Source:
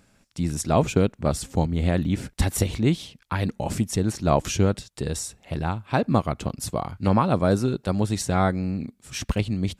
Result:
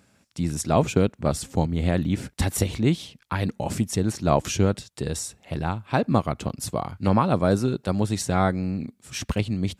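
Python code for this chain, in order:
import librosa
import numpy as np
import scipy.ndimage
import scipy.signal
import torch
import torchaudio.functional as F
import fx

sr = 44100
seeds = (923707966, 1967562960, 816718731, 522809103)

y = scipy.signal.sosfilt(scipy.signal.butter(2, 66.0, 'highpass', fs=sr, output='sos'), x)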